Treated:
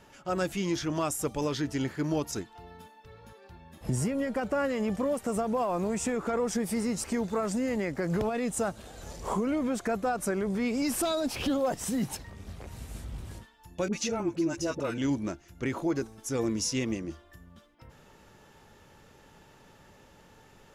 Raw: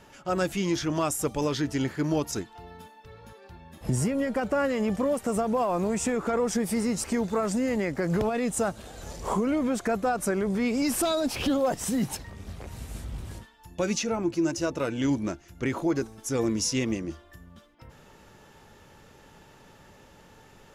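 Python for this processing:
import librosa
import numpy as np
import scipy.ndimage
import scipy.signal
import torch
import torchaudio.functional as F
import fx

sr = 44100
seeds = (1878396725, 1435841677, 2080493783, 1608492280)

y = fx.dispersion(x, sr, late='highs', ms=49.0, hz=730.0, at=(13.88, 14.98))
y = y * 10.0 ** (-3.0 / 20.0)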